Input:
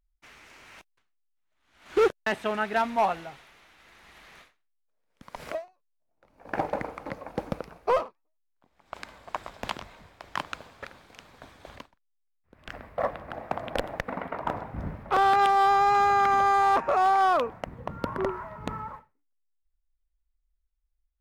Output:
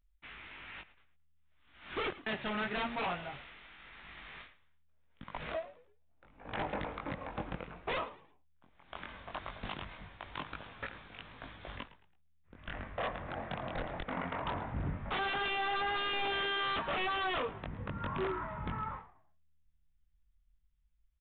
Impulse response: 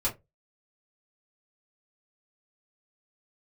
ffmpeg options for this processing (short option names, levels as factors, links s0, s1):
-filter_complex "[0:a]equalizer=f=540:w=0.62:g=-7,asplit=2[s0][s1];[s1]acompressor=threshold=0.0112:ratio=6,volume=1.26[s2];[s0][s2]amix=inputs=2:normalize=0,flanger=delay=18.5:depth=4.5:speed=0.18,aeval=exprs='0.0355*(abs(mod(val(0)/0.0355+3,4)-2)-1)':c=same,asplit=2[s3][s4];[s4]asplit=3[s5][s6][s7];[s5]adelay=110,afreqshift=-78,volume=0.141[s8];[s6]adelay=220,afreqshift=-156,volume=0.0479[s9];[s7]adelay=330,afreqshift=-234,volume=0.0164[s10];[s8][s9][s10]amix=inputs=3:normalize=0[s11];[s3][s11]amix=inputs=2:normalize=0,aresample=8000,aresample=44100"